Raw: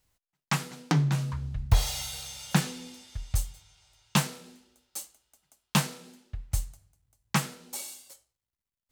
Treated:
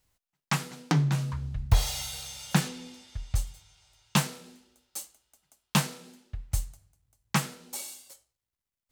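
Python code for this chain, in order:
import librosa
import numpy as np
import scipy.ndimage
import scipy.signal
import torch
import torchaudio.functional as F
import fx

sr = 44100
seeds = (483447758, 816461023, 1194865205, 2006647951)

y = fx.high_shelf(x, sr, hz=8400.0, db=-8.5, at=(2.68, 3.47))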